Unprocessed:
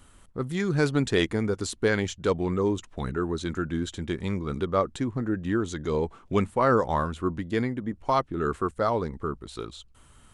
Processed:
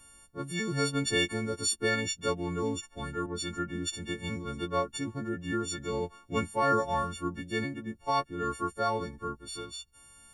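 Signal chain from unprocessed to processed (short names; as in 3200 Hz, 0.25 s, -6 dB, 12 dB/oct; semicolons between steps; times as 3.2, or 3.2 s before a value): frequency quantiser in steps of 4 st; 3.26–3.9 three-band expander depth 70%; gain -6.5 dB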